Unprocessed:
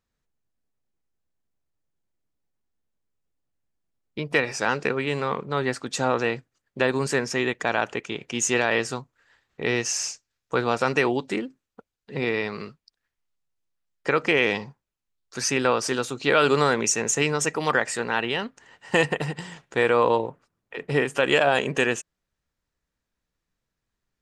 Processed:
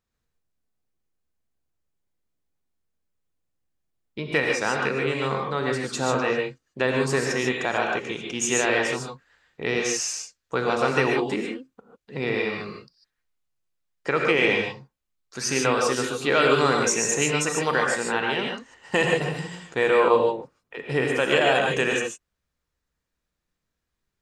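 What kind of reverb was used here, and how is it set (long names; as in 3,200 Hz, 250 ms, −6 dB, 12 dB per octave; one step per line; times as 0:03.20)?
reverb whose tail is shaped and stops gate 170 ms rising, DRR 0.5 dB
level −2 dB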